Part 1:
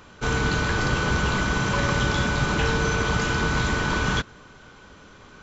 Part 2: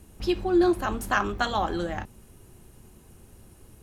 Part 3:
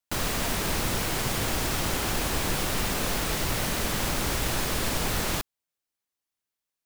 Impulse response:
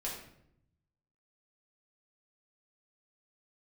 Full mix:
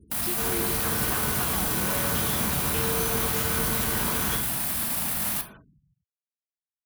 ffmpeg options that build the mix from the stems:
-filter_complex "[0:a]adelay=150,volume=0.447,asplit=2[s0][s1];[s1]volume=0.631[s2];[1:a]volume=0.891[s3];[2:a]firequalizer=gain_entry='entry(110,0);entry(210,7);entry(460,-10);entry(660,4);entry(6800,-1);entry(9900,10)':delay=0.05:min_phase=1,alimiter=limit=0.075:level=0:latency=1:release=34,volume=0.631,asplit=2[s4][s5];[s5]volume=0.596[s6];[s0][s3]amix=inputs=2:normalize=0,acompressor=threshold=0.02:ratio=6,volume=1[s7];[3:a]atrim=start_sample=2205[s8];[s2][s6]amix=inputs=2:normalize=0[s9];[s9][s8]afir=irnorm=-1:irlink=0[s10];[s4][s7][s10]amix=inputs=3:normalize=0,highpass=60,afftfilt=real='re*gte(hypot(re,im),0.00282)':imag='im*gte(hypot(re,im),0.00282)':win_size=1024:overlap=0.75,highshelf=f=5400:g=7.5"

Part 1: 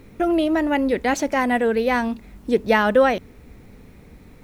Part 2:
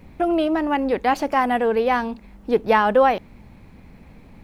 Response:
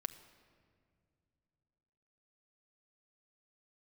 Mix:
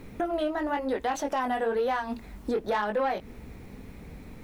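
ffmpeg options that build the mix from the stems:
-filter_complex "[0:a]alimiter=limit=0.15:level=0:latency=1,volume=1[s0];[1:a]flanger=delay=18:depth=5.1:speed=1,asoftclip=type=tanh:threshold=0.178,volume=-1,volume=0.75,asplit=2[s1][s2];[s2]apad=whole_len=195577[s3];[s0][s3]sidechaincompress=threshold=0.0251:ratio=8:attack=16:release=216[s4];[s4][s1]amix=inputs=2:normalize=0,alimiter=limit=0.1:level=0:latency=1:release=229"

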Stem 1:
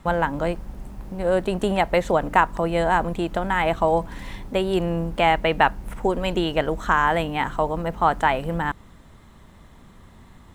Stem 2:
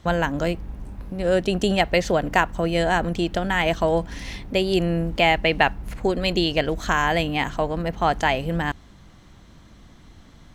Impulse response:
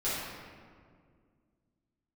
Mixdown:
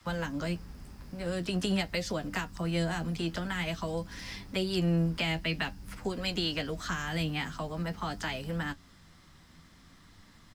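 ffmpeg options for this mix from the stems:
-filter_complex "[0:a]highpass=f=1200:w=0.5412,highpass=f=1200:w=1.3066,volume=0.596[s0];[1:a]flanger=delay=9.3:depth=3.5:regen=46:speed=0.48:shape=triangular,adelay=9.3,volume=0.473[s1];[s0][s1]amix=inputs=2:normalize=0,acrossover=split=370|3000[s2][s3][s4];[s3]acompressor=threshold=0.0158:ratio=6[s5];[s2][s5][s4]amix=inputs=3:normalize=0,equalizer=f=160:t=o:w=0.33:g=5,equalizer=f=250:t=o:w=0.33:g=3,equalizer=f=5000:t=o:w=0.33:g=11"

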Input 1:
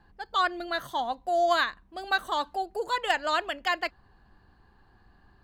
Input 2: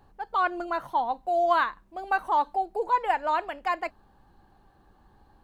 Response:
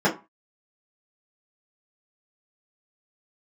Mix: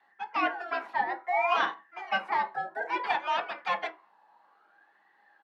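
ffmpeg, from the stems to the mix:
-filter_complex "[0:a]aeval=exprs='val(0)*sin(2*PI*1400*n/s+1400*0.35/0.59*sin(2*PI*0.59*n/s))':c=same,volume=0.668,asplit=2[s0][s1];[s1]volume=0.15[s2];[1:a]aemphasis=mode=production:type=riaa,volume=-1,adelay=4.7,volume=0.631,asplit=3[s3][s4][s5];[s4]volume=0.0794[s6];[s5]apad=whole_len=239638[s7];[s0][s7]sidechaingate=range=0.0224:threshold=0.00112:ratio=16:detection=peak[s8];[2:a]atrim=start_sample=2205[s9];[s2][s6]amix=inputs=2:normalize=0[s10];[s10][s9]afir=irnorm=-1:irlink=0[s11];[s8][s3][s11]amix=inputs=3:normalize=0,highpass=570,lowpass=2600"

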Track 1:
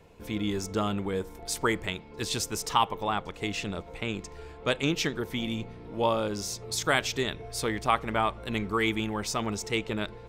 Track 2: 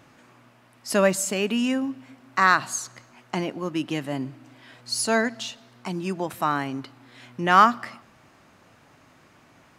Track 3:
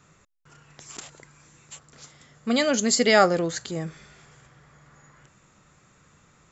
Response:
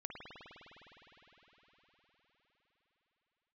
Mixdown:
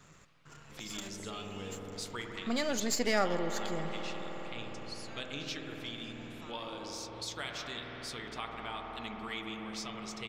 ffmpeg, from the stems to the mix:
-filter_complex "[0:a]flanger=delay=4.4:depth=4.7:regen=63:speed=0.35:shape=triangular,adelay=500,volume=1.19,asplit=2[s0][s1];[s1]volume=0.501[s2];[1:a]acompressor=threshold=0.0224:ratio=2.5,volume=0.398,asplit=2[s3][s4];[s4]volume=0.266[s5];[2:a]aeval=exprs='if(lt(val(0),0),0.447*val(0),val(0))':c=same,volume=0.891,asplit=2[s6][s7];[s7]volume=0.596[s8];[s0][s3]amix=inputs=2:normalize=0,bandpass=f=3800:t=q:w=1.4:csg=0,alimiter=level_in=1.12:limit=0.0631:level=0:latency=1:release=324,volume=0.891,volume=1[s9];[3:a]atrim=start_sample=2205[s10];[s2][s5][s8]amix=inputs=3:normalize=0[s11];[s11][s10]afir=irnorm=-1:irlink=0[s12];[s6][s9][s12]amix=inputs=3:normalize=0,acompressor=threshold=0.00562:ratio=1.5"

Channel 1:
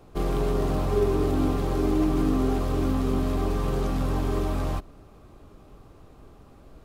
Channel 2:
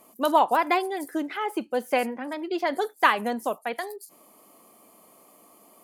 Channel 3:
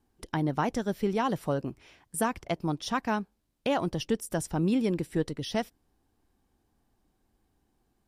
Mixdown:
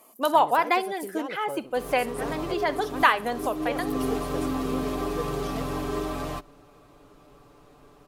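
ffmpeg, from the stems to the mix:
-filter_complex "[0:a]aecho=1:1:6.9:0.59,adelay=1600,volume=1.06[s0];[1:a]volume=1.12,asplit=3[s1][s2][s3];[s2]volume=0.0944[s4];[2:a]equalizer=f=500:t=o:w=0.42:g=13,volume=0.299[s5];[s3]apad=whole_len=372878[s6];[s0][s6]sidechaincompress=threshold=0.0282:ratio=8:attack=9.8:release=366[s7];[s4]aecho=0:1:65|130|195|260|325:1|0.37|0.137|0.0507|0.0187[s8];[s7][s1][s5][s8]amix=inputs=4:normalize=0,lowshelf=f=210:g=-12"

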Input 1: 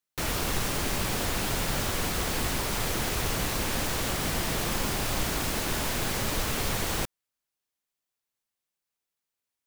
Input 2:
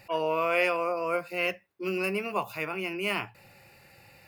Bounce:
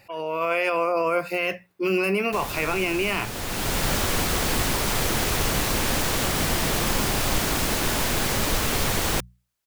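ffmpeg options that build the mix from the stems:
-filter_complex "[0:a]adelay=2150,volume=0.596[s0];[1:a]alimiter=level_in=1.06:limit=0.0631:level=0:latency=1:release=20,volume=0.944,volume=1,asplit=2[s1][s2];[s2]apad=whole_len=521173[s3];[s0][s3]sidechaincompress=threshold=0.00708:ratio=6:attack=48:release=709[s4];[s4][s1]amix=inputs=2:normalize=0,bandreject=f=60:t=h:w=6,bandreject=f=120:t=h:w=6,bandreject=f=180:t=h:w=6,dynaudnorm=f=130:g=5:m=3.16"

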